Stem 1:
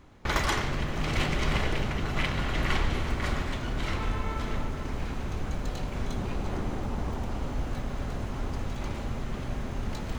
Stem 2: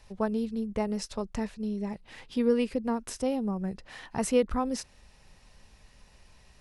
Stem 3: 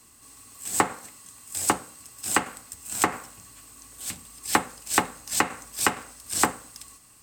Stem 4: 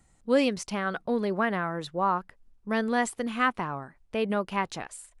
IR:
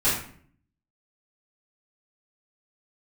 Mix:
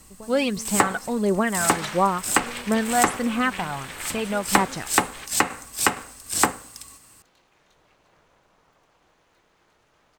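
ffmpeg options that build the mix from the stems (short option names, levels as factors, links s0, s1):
-filter_complex "[0:a]highpass=f=1100:p=1,aeval=exprs='val(0)*sin(2*PI*220*n/s)':c=same,adelay=1350,volume=1.06,asplit=2[s0][s1];[s1]volume=0.158[s2];[1:a]acompressor=threshold=0.0224:ratio=6,volume=0.473[s3];[2:a]volume=1.33[s4];[3:a]aphaser=in_gain=1:out_gain=1:delay=1.4:decay=0.51:speed=1.5:type=sinusoidal,volume=1.26,asplit=2[s5][s6];[s6]apad=whole_len=508764[s7];[s0][s7]sidechaingate=range=0.0224:threshold=0.00224:ratio=16:detection=peak[s8];[s2]aecho=0:1:249:1[s9];[s8][s3][s4][s5][s9]amix=inputs=5:normalize=0"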